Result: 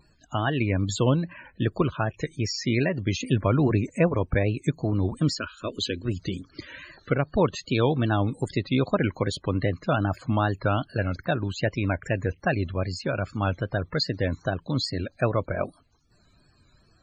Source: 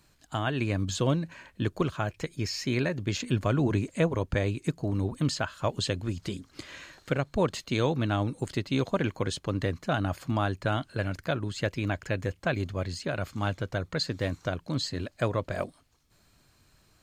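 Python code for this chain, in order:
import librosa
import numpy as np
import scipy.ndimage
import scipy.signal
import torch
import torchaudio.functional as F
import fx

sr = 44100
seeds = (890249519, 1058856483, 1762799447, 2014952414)

y = fx.fixed_phaser(x, sr, hz=320.0, stages=4, at=(5.38, 6.05))
y = fx.vibrato(y, sr, rate_hz=2.5, depth_cents=88.0)
y = fx.spec_topn(y, sr, count=64)
y = y * librosa.db_to_amplitude(4.0)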